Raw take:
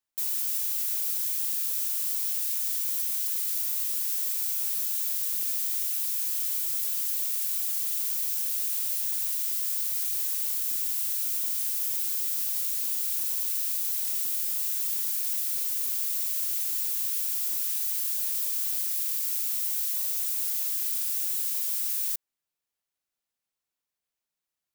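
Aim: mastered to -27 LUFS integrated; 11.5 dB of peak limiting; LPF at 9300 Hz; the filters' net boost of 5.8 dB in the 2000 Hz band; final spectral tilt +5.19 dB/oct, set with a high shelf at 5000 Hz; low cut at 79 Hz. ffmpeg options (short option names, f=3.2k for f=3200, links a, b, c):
-af "highpass=79,lowpass=9.3k,equalizer=f=2k:t=o:g=6,highshelf=f=5k:g=6.5,volume=10dB,alimiter=limit=-20.5dB:level=0:latency=1"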